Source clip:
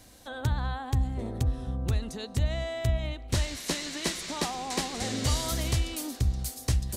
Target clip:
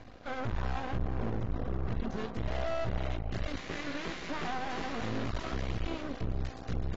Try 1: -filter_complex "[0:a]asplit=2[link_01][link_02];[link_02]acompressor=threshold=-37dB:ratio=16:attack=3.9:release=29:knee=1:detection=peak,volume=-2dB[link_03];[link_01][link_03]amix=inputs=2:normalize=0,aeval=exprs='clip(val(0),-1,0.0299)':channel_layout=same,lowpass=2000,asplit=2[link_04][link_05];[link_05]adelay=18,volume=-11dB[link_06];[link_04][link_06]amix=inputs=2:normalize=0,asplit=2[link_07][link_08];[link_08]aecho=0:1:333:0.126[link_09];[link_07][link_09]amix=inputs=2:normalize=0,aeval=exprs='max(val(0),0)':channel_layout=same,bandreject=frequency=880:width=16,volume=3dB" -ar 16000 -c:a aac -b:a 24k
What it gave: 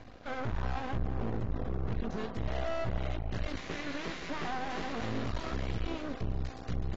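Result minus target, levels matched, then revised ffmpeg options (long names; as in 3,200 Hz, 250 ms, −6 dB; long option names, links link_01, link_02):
downward compressor: peak gain reduction +10 dB
-filter_complex "[0:a]asplit=2[link_01][link_02];[link_02]acompressor=threshold=-26.5dB:ratio=16:attack=3.9:release=29:knee=1:detection=peak,volume=-2dB[link_03];[link_01][link_03]amix=inputs=2:normalize=0,aeval=exprs='clip(val(0),-1,0.0299)':channel_layout=same,lowpass=2000,asplit=2[link_04][link_05];[link_05]adelay=18,volume=-11dB[link_06];[link_04][link_06]amix=inputs=2:normalize=0,asplit=2[link_07][link_08];[link_08]aecho=0:1:333:0.126[link_09];[link_07][link_09]amix=inputs=2:normalize=0,aeval=exprs='max(val(0),0)':channel_layout=same,bandreject=frequency=880:width=16,volume=3dB" -ar 16000 -c:a aac -b:a 24k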